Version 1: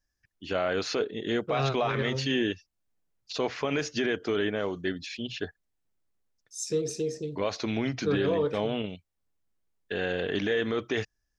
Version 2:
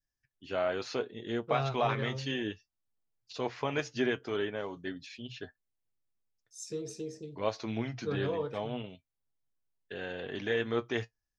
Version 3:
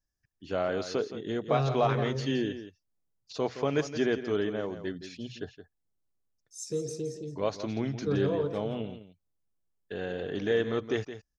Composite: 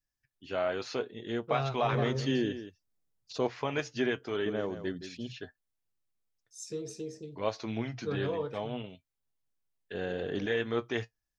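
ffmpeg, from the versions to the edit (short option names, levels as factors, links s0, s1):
-filter_complex "[2:a]asplit=3[s0][s1][s2];[1:a]asplit=4[s3][s4][s5][s6];[s3]atrim=end=1.932[s7];[s0]atrim=start=1.928:end=3.472[s8];[s4]atrim=start=3.468:end=4.462[s9];[s1]atrim=start=4.458:end=5.332[s10];[s5]atrim=start=5.328:end=9.942[s11];[s2]atrim=start=9.938:end=10.462[s12];[s6]atrim=start=10.458[s13];[s7][s8]acrossfade=d=0.004:c1=hsin:c2=hsin[s14];[s14][s9]acrossfade=d=0.004:c1=hsin:c2=hsin[s15];[s15][s10]acrossfade=d=0.004:c1=hsin:c2=hsin[s16];[s16][s11]acrossfade=d=0.004:c1=hsin:c2=hsin[s17];[s17][s12]acrossfade=d=0.004:c1=hsin:c2=hsin[s18];[s18][s13]acrossfade=d=0.004:c1=hsin:c2=hsin"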